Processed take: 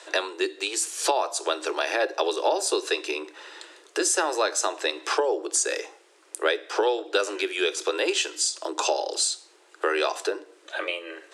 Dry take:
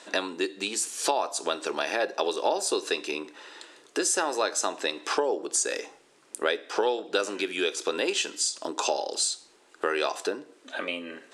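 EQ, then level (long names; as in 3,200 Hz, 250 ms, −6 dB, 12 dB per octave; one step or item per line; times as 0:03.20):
Chebyshev high-pass filter 310 Hz, order 8
+3.0 dB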